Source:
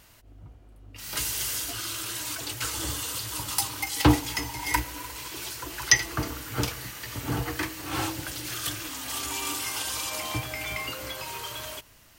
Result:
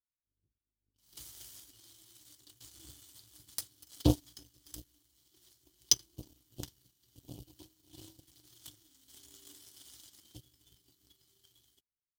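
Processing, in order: FFT band-reject 430–2900 Hz; power-law waveshaper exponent 2

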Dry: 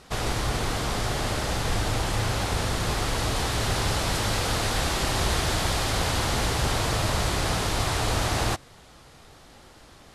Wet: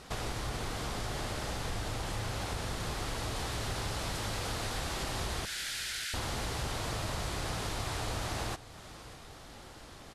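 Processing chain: 5.45–6.14 s: steep high-pass 1.4 kHz 96 dB/octave; compression 2.5:1, threshold -38 dBFS, peak gain reduction 12 dB; feedback delay 593 ms, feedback 31%, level -17 dB

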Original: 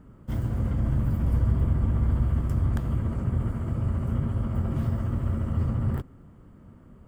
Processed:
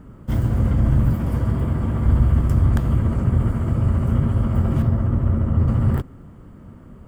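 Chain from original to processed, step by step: 1.13–2.06 s: high-pass 150 Hz 6 dB/octave; 4.82–5.68 s: treble shelf 2.4 kHz -11.5 dB; trim +8 dB

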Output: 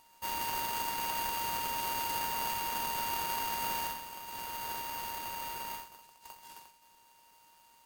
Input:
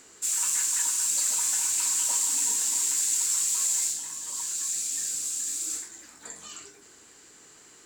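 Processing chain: high-pass 750 Hz; full-wave rectifier; polarity switched at an audio rate 930 Hz; trim -8.5 dB

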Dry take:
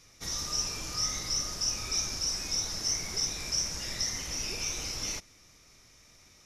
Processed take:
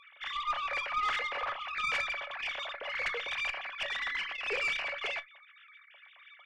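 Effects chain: formants replaced by sine waves; feedback comb 570 Hz, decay 0.15 s, harmonics all, mix 70%; valve stage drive 34 dB, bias 0.4; reverberation, pre-delay 7 ms, DRR 16 dB; trim +9 dB

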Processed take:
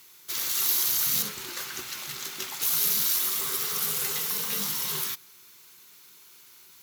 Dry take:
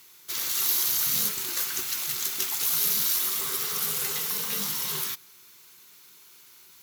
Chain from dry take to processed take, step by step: 1.22–2.62 s: treble shelf 6 kHz -11 dB

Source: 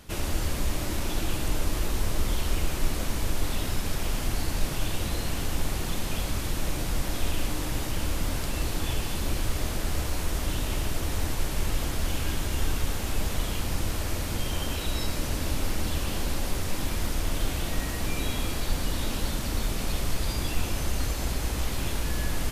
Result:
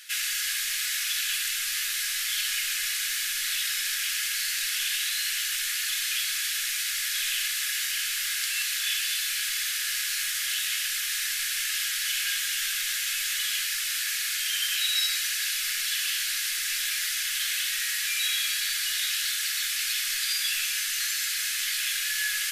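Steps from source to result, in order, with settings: elliptic high-pass 1.6 kHz, stop band 50 dB; reverberation, pre-delay 4 ms, DRR 7 dB; trim +9 dB

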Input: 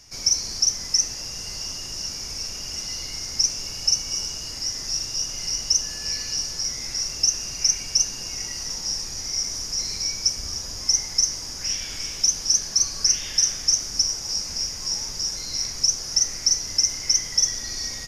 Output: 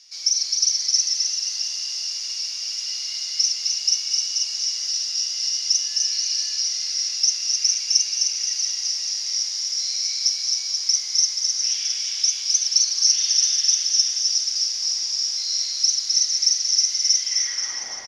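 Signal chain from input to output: chunks repeated in reverse 346 ms, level -5 dB; band-pass sweep 4 kHz -> 790 Hz, 17.17–17.87 s; bouncing-ball echo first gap 260 ms, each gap 0.85×, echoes 5; trim +6 dB

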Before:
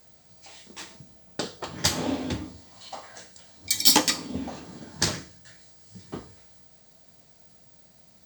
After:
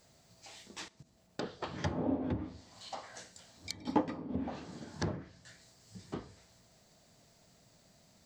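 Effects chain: low-pass that closes with the level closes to 790 Hz, closed at -25 dBFS; 0.88–1.42 s: level held to a coarse grid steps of 16 dB; trim -4 dB

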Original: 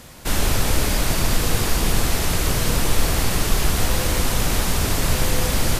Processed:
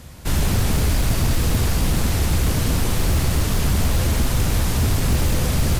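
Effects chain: peaking EQ 76 Hz +13 dB 2.2 oct; hum notches 50/100 Hz; wavefolder -9.5 dBFS; trim -3 dB

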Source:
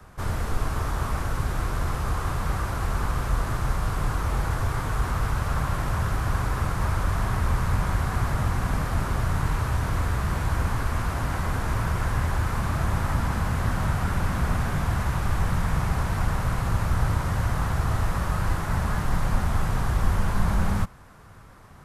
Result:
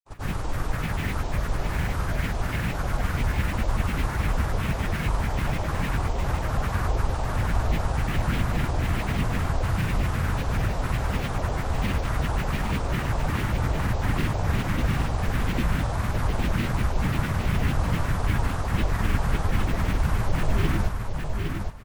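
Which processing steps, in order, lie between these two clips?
granulator, pitch spread up and down by 12 st; feedback delay 810 ms, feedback 18%, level -5 dB

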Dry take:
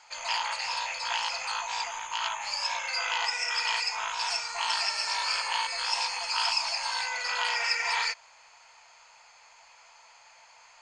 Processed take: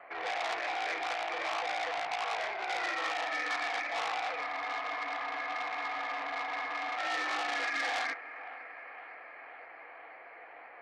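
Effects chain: peak limiter -25 dBFS, peak gain reduction 11 dB; thinning echo 513 ms, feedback 80%, high-pass 900 Hz, level -16 dB; mistuned SSB -190 Hz 230–2400 Hz; spectral freeze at 4.49 s, 2.49 s; transformer saturation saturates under 3.4 kHz; trim +6 dB

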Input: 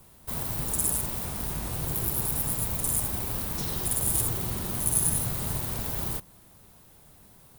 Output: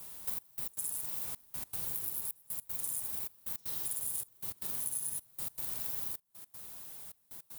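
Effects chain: tilt EQ +2.5 dB/octave; compression 6:1, threshold -35 dBFS, peak gain reduction 22 dB; trance gate "xxxx..x.xx" 156 bpm -24 dB

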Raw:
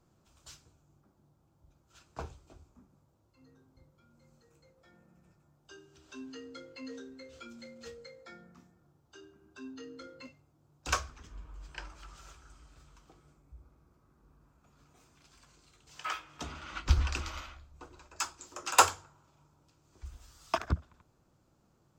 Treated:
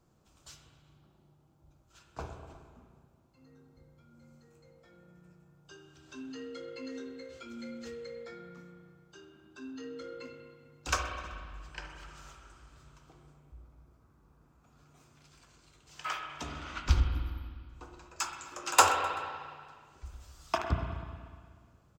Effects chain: 17.00–17.69 s: brick-wall FIR band-stop 340–9700 Hz; feedback delay 128 ms, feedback 50%, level -23 dB; spring tank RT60 1.9 s, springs 34/51/60 ms, chirp 45 ms, DRR 3.5 dB

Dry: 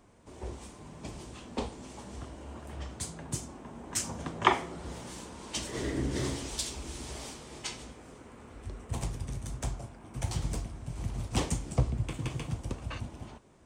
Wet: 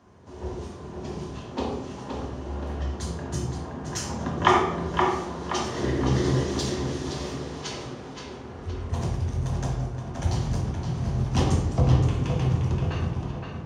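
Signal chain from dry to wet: tape echo 522 ms, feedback 52%, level -4 dB, low-pass 3.9 kHz; reverberation RT60 0.85 s, pre-delay 3 ms, DRR -0.5 dB; trim -3 dB

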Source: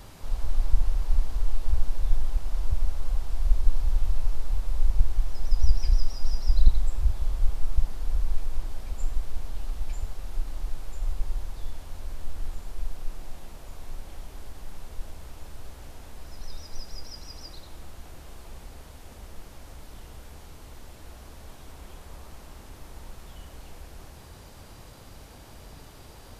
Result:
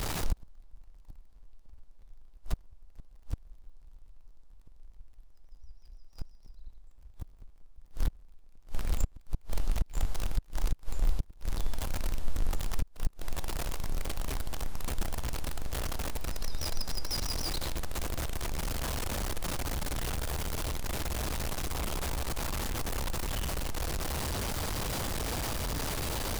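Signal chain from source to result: jump at every zero crossing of -28.5 dBFS; inverted gate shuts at -16 dBFS, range -31 dB

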